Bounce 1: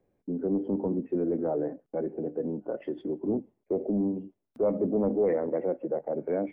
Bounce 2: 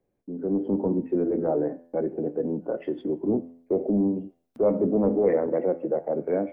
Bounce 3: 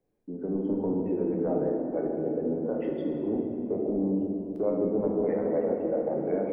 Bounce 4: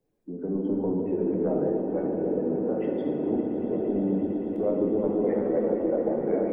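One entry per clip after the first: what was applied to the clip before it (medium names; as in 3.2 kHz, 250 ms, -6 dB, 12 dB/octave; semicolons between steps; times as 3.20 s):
level rider gain up to 8 dB; de-hum 84.5 Hz, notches 38; trim -3.5 dB
compression 4:1, threshold -24 dBFS, peak gain reduction 7.5 dB; simulated room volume 140 m³, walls hard, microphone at 0.44 m; trim -3 dB
coarse spectral quantiser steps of 15 dB; echo with a slow build-up 114 ms, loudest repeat 8, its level -15 dB; trim +1.5 dB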